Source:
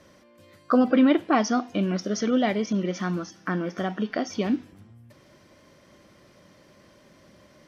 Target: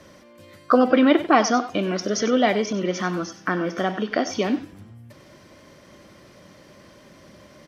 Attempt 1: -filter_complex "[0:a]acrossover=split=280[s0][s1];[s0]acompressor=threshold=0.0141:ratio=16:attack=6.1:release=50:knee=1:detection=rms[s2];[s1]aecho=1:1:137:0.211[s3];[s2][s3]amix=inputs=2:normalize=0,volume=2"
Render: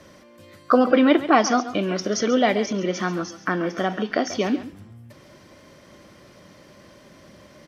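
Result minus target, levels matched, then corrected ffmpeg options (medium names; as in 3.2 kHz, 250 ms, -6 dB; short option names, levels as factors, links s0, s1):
echo 42 ms late
-filter_complex "[0:a]acrossover=split=280[s0][s1];[s0]acompressor=threshold=0.0141:ratio=16:attack=6.1:release=50:knee=1:detection=rms[s2];[s1]aecho=1:1:95:0.211[s3];[s2][s3]amix=inputs=2:normalize=0,volume=2"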